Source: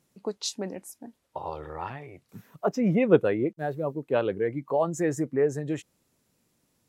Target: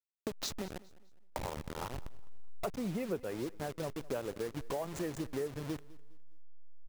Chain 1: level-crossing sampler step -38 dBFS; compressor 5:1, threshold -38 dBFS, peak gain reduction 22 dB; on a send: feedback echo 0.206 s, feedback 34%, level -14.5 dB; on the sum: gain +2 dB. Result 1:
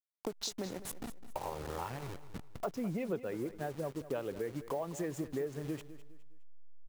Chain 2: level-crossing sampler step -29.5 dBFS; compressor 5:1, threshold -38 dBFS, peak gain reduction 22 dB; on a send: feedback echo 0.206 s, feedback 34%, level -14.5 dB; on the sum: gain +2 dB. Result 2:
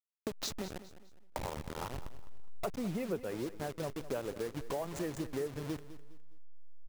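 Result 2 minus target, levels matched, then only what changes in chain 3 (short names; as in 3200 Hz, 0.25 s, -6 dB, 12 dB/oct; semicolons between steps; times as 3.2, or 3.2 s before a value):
echo-to-direct +6.5 dB
change: feedback echo 0.206 s, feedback 34%, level -21 dB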